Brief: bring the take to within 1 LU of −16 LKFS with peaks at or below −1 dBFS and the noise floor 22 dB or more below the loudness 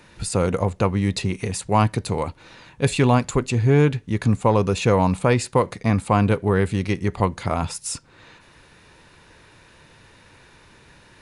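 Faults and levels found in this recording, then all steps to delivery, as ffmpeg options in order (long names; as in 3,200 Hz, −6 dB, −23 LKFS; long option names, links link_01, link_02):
integrated loudness −21.5 LKFS; sample peak −5.5 dBFS; target loudness −16.0 LKFS
→ -af "volume=5.5dB,alimiter=limit=-1dB:level=0:latency=1"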